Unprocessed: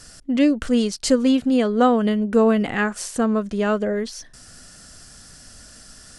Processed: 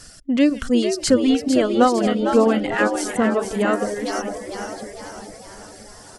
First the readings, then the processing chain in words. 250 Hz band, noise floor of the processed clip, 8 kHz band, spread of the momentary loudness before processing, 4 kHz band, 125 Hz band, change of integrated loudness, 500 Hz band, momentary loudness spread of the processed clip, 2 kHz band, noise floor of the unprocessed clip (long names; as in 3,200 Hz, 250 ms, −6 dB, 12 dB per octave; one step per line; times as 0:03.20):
0.0 dB, −43 dBFS, +2.0 dB, 8 LU, +2.0 dB, −1.5 dB, +0.5 dB, +2.0 dB, 17 LU, +2.5 dB, −46 dBFS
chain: feedback delay that plays each chunk backwards 493 ms, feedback 54%, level −10.5 dB
reverb reduction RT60 1.2 s
echo with shifted repeats 453 ms, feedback 50%, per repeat +85 Hz, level −7.5 dB
level +1.5 dB